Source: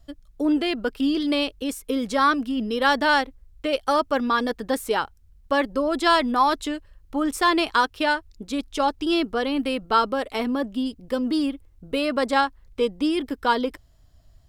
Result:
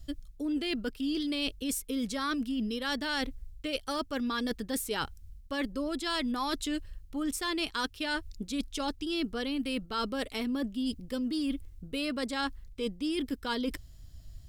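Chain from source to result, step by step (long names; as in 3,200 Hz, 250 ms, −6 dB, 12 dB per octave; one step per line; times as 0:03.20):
parametric band 820 Hz −13.5 dB 2.4 octaves
reversed playback
downward compressor 6 to 1, threshold −37 dBFS, peak gain reduction 14 dB
reversed playback
level +7 dB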